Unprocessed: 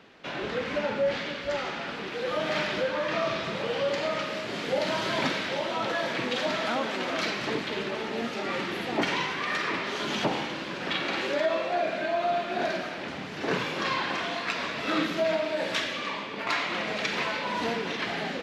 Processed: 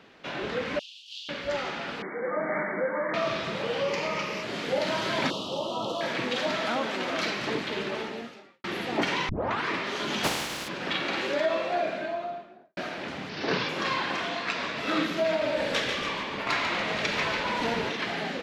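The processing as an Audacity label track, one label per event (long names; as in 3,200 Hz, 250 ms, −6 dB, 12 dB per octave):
0.790000	1.290000	Butterworth high-pass 2,800 Hz 96 dB per octave
2.020000	3.140000	linear-phase brick-wall band-pass 150–2,300 Hz
3.840000	4.430000	EQ curve with evenly spaced ripples crests per octave 0.8, crest to trough 8 dB
5.300000	6.010000	elliptic band-stop filter 1,200–2,900 Hz
8.000000	8.640000	fade out quadratic
9.290000	9.290000	tape start 0.40 s
10.230000	10.670000	compressing power law on the bin magnitudes exponent 0.4
11.700000	12.770000	fade out and dull
13.290000	13.690000	high shelf with overshoot 6,600 Hz −10 dB, Q 3
14.290000	14.770000	low-pass filter 8,400 Hz
15.270000	17.890000	echo with shifted repeats 143 ms, feedback 52%, per repeat −56 Hz, level −5.5 dB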